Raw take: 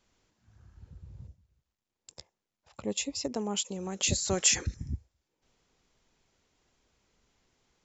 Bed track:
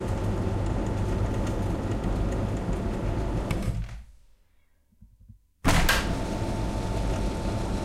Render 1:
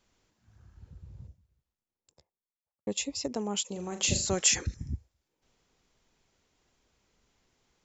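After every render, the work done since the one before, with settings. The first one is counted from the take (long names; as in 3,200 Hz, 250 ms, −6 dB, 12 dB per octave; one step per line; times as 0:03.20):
0:01.05–0:02.87: fade out and dull
0:03.71–0:04.29: flutter between parallel walls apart 6.8 metres, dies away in 0.32 s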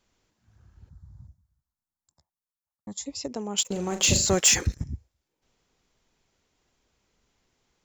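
0:00.89–0:03.06: phaser with its sweep stopped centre 1,100 Hz, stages 4
0:03.58–0:04.84: leveller curve on the samples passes 2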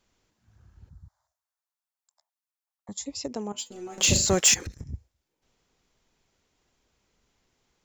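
0:01.08–0:02.89: elliptic high-pass filter 620 Hz
0:03.52–0:03.98: stiff-string resonator 120 Hz, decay 0.27 s, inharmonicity 0.002
0:04.54–0:04.94: downward compressor, threshold −33 dBFS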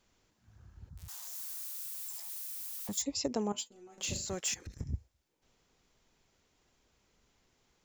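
0:00.97–0:03.02: spike at every zero crossing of −36 dBFS
0:03.53–0:04.80: duck −15.5 dB, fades 0.16 s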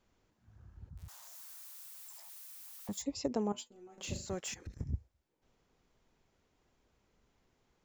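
high-shelf EQ 2,400 Hz −9.5 dB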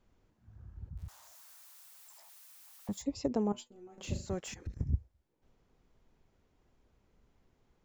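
spectral tilt −1.5 dB per octave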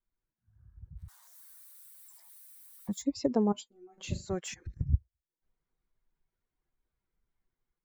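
spectral dynamics exaggerated over time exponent 1.5
automatic gain control gain up to 5.5 dB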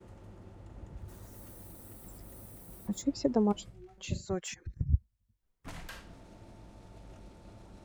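mix in bed track −23.5 dB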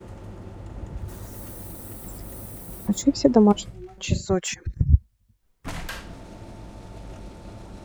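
level +11.5 dB
brickwall limiter −3 dBFS, peak gain reduction 1 dB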